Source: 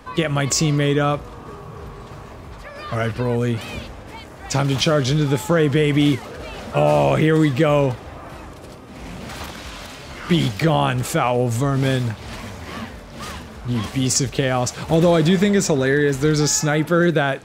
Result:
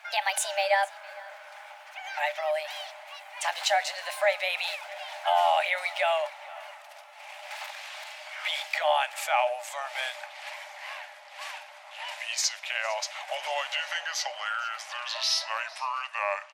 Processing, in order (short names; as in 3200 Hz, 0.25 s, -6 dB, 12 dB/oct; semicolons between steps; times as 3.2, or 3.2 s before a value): speed glide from 139% -> 72%; rippled Chebyshev high-pass 580 Hz, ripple 9 dB; echo 0.456 s -21.5 dB